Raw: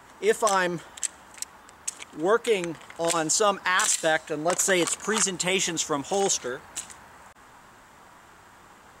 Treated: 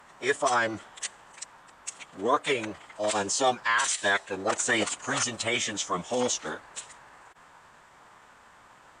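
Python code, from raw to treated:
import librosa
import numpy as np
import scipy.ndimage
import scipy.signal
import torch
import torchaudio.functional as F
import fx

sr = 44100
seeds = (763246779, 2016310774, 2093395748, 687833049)

y = fx.low_shelf(x, sr, hz=310.0, db=-8.0)
y = fx.pitch_keep_formants(y, sr, semitones=-8.0)
y = fx.high_shelf(y, sr, hz=6800.0, db=-6.5)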